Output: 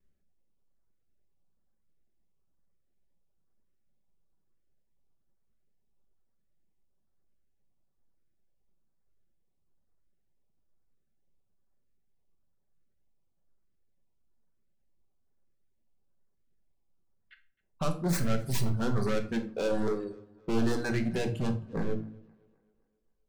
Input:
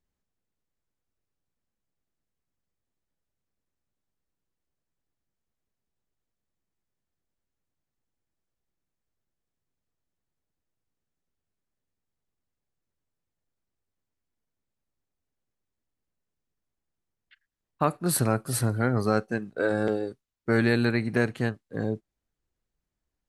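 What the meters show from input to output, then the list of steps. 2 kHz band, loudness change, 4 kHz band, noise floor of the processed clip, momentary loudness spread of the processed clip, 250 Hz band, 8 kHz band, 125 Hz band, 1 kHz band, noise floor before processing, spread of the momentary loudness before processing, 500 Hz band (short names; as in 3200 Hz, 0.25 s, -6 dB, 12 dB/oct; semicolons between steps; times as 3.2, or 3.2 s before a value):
-9.0 dB, -5.0 dB, -3.0 dB, -73 dBFS, 7 LU, -4.0 dB, -8.5 dB, -4.0 dB, -7.0 dB, under -85 dBFS, 9 LU, -5.0 dB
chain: tracing distortion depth 0.21 ms; notches 60/120/180/240/300/360 Hz; reverb removal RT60 1.6 s; high shelf 2100 Hz -11 dB; vibrato 0.73 Hz 22 cents; in parallel at +1 dB: compressor, threshold -33 dBFS, peak gain reduction 13 dB; on the sum: overloaded stage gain 28 dB; LFO notch saw up 1.1 Hz 770–3200 Hz; dynamic EQ 7100 Hz, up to +5 dB, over -55 dBFS, Q 0.75; tape echo 0.262 s, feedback 48%, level -24 dB, low-pass 5700 Hz; shoebox room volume 480 m³, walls furnished, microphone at 1.1 m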